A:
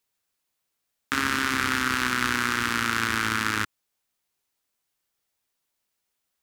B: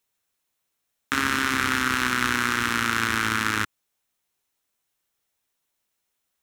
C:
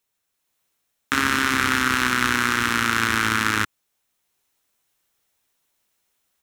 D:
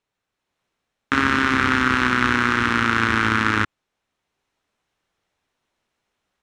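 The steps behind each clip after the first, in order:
notch 4700 Hz, Q 12; gain +1.5 dB
AGC gain up to 6 dB
tape spacing loss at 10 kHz 21 dB; gain +5 dB

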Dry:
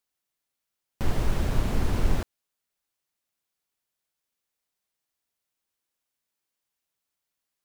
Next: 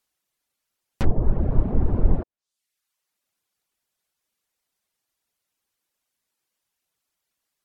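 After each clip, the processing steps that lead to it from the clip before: treble ducked by the level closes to 680 Hz, closed at -21.5 dBFS; reverb removal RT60 0.74 s; gain +6.5 dB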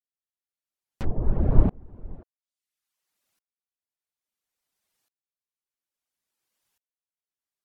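dB-ramp tremolo swelling 0.59 Hz, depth 33 dB; gain +5 dB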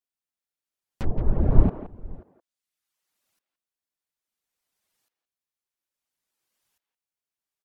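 speakerphone echo 0.17 s, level -9 dB; gain +1 dB

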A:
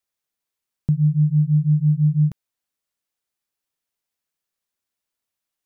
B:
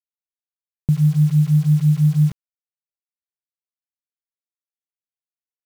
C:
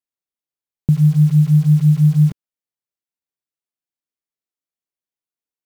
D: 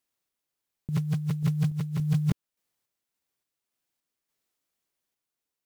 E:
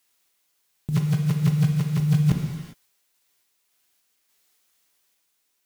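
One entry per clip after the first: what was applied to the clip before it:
bit-crush 7-bit; gain +2 dB
bell 290 Hz +6 dB 1.9 oct
random-step tremolo; negative-ratio compressor -28 dBFS, ratio -1
non-linear reverb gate 0.43 s falling, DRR 2.5 dB; mismatched tape noise reduction encoder only; gain +4 dB

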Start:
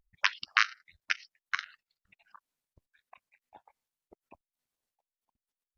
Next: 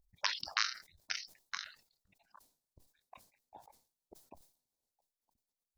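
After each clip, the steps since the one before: band shelf 1900 Hz -11.5 dB; sustainer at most 130 dB/s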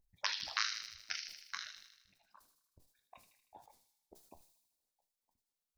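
flange 1.1 Hz, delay 9.7 ms, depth 6.4 ms, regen -65%; thin delay 78 ms, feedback 60%, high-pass 2500 Hz, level -5.5 dB; gain +2 dB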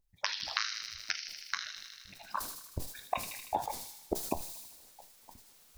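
recorder AGC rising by 30 dB/s

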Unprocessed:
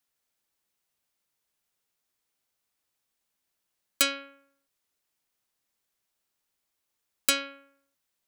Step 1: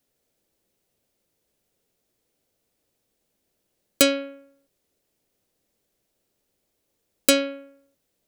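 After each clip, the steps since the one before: resonant low shelf 730 Hz +10 dB, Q 1.5; gain +4.5 dB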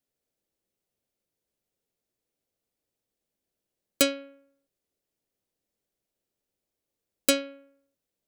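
upward expander 1.5:1, over -27 dBFS; gain -4 dB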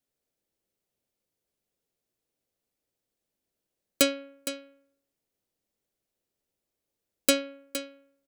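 echo 0.463 s -11.5 dB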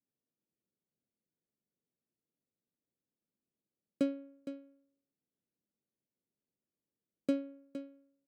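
band-pass 200 Hz, Q 1.3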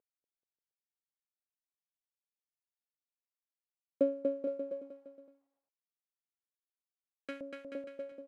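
CVSD 64 kbps; LFO band-pass saw up 0.27 Hz 480–1900 Hz; bouncing-ball echo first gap 0.24 s, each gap 0.8×, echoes 5; gain +8.5 dB

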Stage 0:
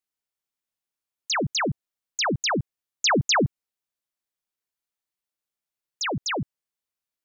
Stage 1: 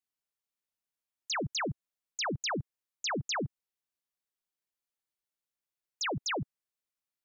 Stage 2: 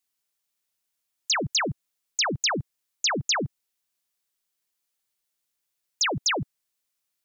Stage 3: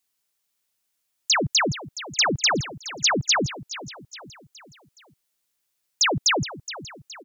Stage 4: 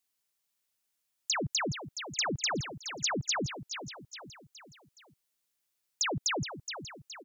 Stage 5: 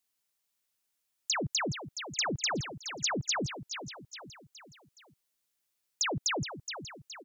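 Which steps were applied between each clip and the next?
dynamic EQ 220 Hz, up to -4 dB, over -36 dBFS, Q 2.1; limiter -24.5 dBFS, peak gain reduction 8 dB; gain -4.5 dB
high shelf 2400 Hz +7.5 dB; gain +5 dB
feedback echo 0.419 s, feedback 47%, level -14.5 dB; gain +4 dB
compressor 5:1, threshold -24 dBFS, peak gain reduction 7 dB; gain -5 dB
Doppler distortion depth 0.17 ms

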